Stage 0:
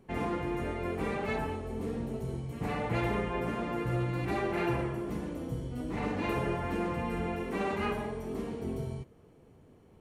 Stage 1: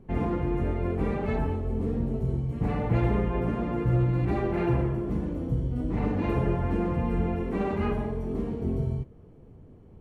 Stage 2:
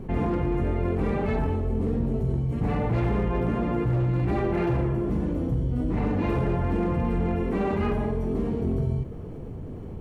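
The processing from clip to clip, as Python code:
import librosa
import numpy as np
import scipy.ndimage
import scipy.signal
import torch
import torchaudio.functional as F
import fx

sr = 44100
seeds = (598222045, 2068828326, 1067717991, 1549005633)

y1 = fx.tilt_eq(x, sr, slope=-3.0)
y2 = np.clip(y1, -10.0 ** (-20.0 / 20.0), 10.0 ** (-20.0 / 20.0))
y2 = fx.env_flatten(y2, sr, amount_pct=50)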